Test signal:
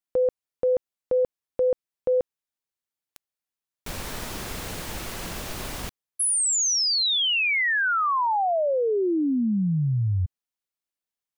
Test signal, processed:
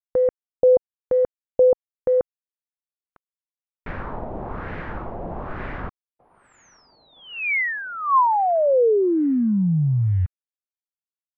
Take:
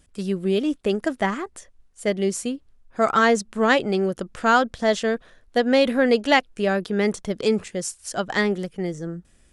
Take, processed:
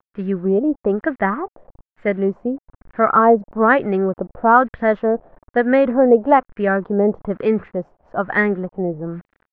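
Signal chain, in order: word length cut 8-bit, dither none; tape spacing loss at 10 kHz 26 dB; LFO low-pass sine 1.1 Hz 690–1900 Hz; trim +4 dB

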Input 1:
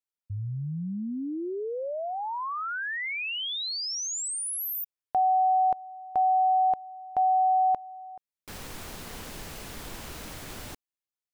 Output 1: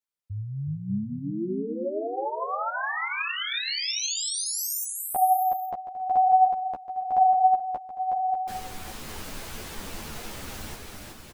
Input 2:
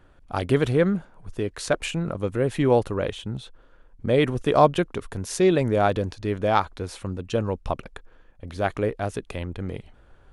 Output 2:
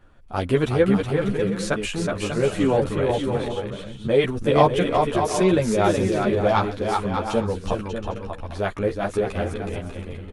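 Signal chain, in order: bouncing-ball echo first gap 370 ms, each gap 0.6×, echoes 5; three-phase chorus; trim +3.5 dB

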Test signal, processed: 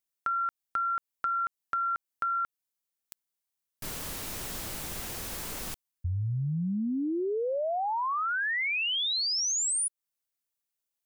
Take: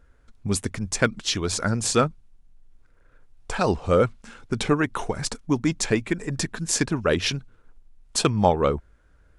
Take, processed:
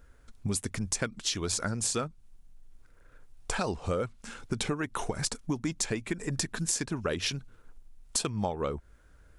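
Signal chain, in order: treble shelf 6.1 kHz +9 dB; compression 6:1, threshold -28 dBFS

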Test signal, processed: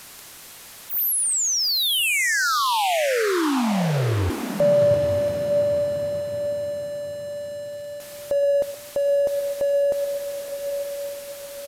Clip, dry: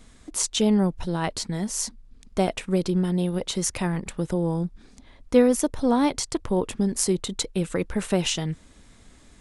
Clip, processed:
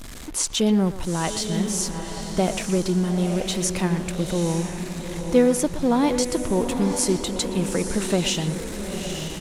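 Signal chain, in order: jump at every zero crossing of -33 dBFS; on a send: echo that smears into a reverb 875 ms, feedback 43%, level -7 dB; on the sum: resampled via 32 kHz; speakerphone echo 120 ms, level -12 dB

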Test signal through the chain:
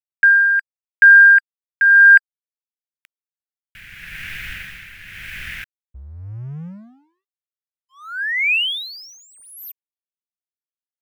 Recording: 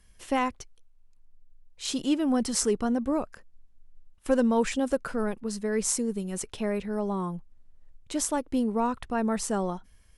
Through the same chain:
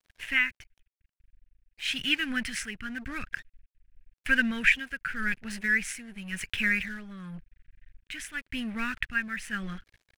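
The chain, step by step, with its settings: FFT filter 100 Hz 0 dB, 170 Hz -3 dB, 340 Hz -19 dB, 640 Hz -27 dB, 960 Hz -25 dB, 1.6 kHz +13 dB, 2.5 kHz +14 dB, 4.2 kHz -5 dB, 7.4 kHz -11 dB, 13 kHz -4 dB; crossover distortion -50.5 dBFS; tremolo 0.91 Hz, depth 66%; trim +6 dB

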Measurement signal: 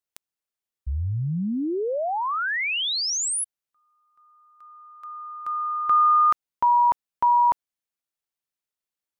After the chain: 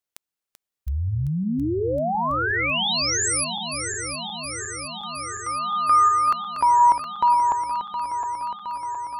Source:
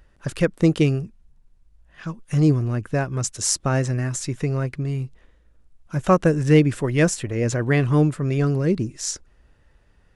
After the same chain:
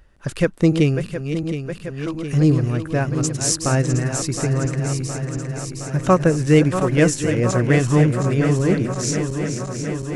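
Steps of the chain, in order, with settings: backward echo that repeats 358 ms, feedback 85%, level -9 dB; trim +1.5 dB

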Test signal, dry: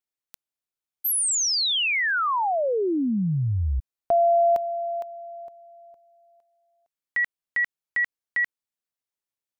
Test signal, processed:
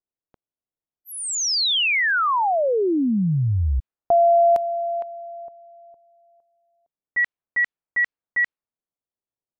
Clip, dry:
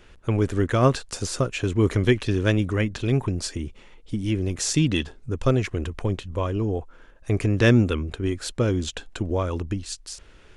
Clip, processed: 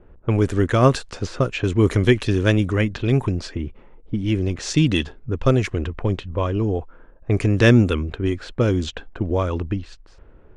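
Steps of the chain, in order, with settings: level-controlled noise filter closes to 720 Hz, open at -18 dBFS; trim +3.5 dB

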